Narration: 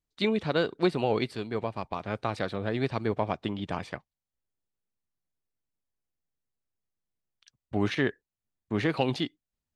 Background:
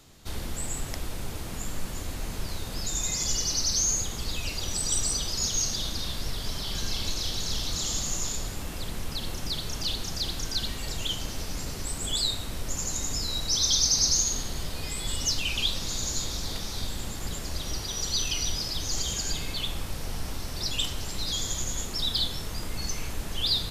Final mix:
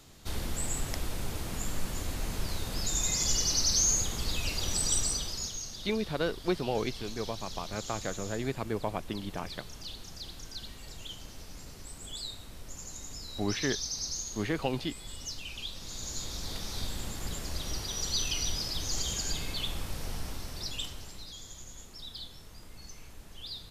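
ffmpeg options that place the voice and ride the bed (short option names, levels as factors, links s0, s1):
-filter_complex "[0:a]adelay=5650,volume=0.596[s0];[1:a]volume=2.82,afade=t=out:st=4.83:d=0.77:silence=0.251189,afade=t=in:st=15.72:d=1.07:silence=0.334965,afade=t=out:st=20.07:d=1.26:silence=0.223872[s1];[s0][s1]amix=inputs=2:normalize=0"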